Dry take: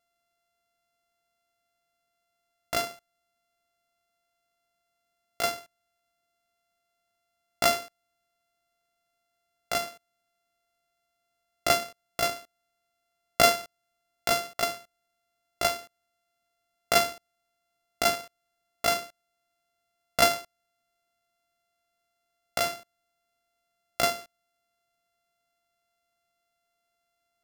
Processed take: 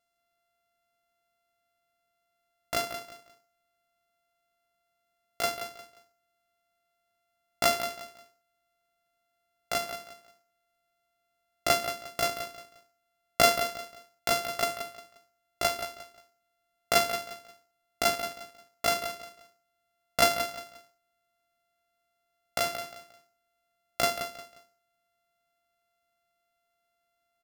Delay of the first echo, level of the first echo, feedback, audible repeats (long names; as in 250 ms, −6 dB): 177 ms, −10.0 dB, 28%, 3